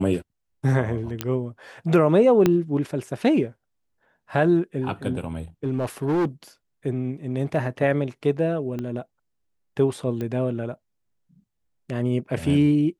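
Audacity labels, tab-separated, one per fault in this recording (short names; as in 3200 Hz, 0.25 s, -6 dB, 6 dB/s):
1.210000	1.210000	pop -9 dBFS
2.460000	2.460000	pop -6 dBFS
5.640000	6.270000	clipped -19 dBFS
8.790000	8.790000	pop -19 dBFS
10.210000	10.210000	pop -19 dBFS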